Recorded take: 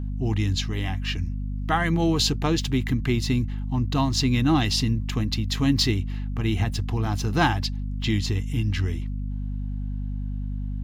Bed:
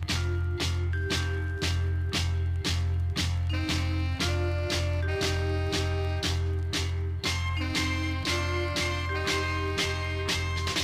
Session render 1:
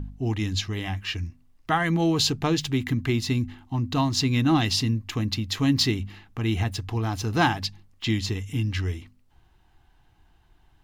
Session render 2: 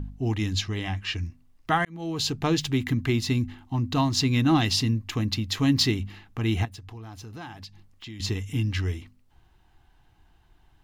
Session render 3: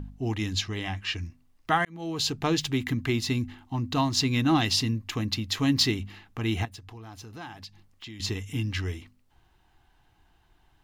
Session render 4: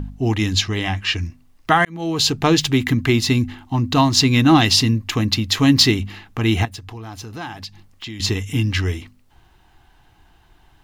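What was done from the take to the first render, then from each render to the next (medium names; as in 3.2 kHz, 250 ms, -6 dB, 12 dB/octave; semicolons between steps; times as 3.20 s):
de-hum 50 Hz, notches 5
0.63–1.21 s: low-pass 9.1 kHz; 1.85–2.51 s: fade in linear; 6.65–8.20 s: compression 3:1, threshold -43 dBFS
bass shelf 230 Hz -5 dB
trim +10 dB; peak limiter -2 dBFS, peak gain reduction 3 dB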